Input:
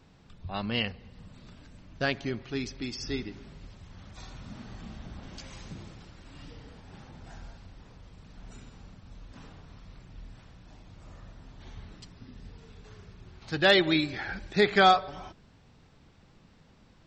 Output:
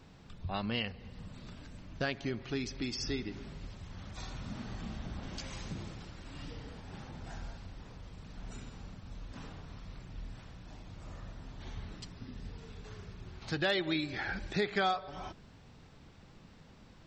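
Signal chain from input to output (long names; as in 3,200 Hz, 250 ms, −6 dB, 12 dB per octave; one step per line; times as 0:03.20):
downward compressor 2.5 to 1, threshold −36 dBFS, peak gain reduction 14 dB
level +2 dB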